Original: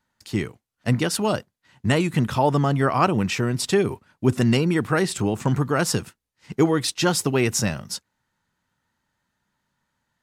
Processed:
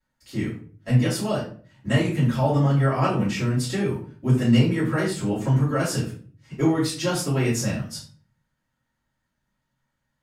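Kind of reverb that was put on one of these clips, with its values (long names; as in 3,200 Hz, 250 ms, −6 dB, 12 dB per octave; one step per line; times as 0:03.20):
rectangular room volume 35 cubic metres, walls mixed, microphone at 2.3 metres
level −15.5 dB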